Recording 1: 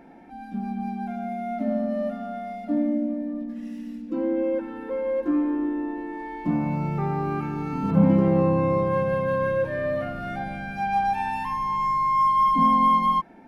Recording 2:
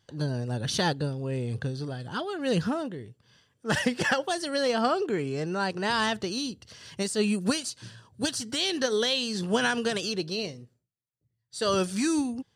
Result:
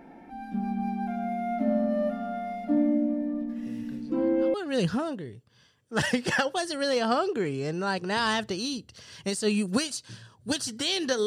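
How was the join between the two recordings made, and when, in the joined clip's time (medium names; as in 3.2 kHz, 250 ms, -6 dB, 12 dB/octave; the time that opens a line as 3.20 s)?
recording 1
3.66 s: add recording 2 from 1.39 s 0.88 s -17 dB
4.54 s: go over to recording 2 from 2.27 s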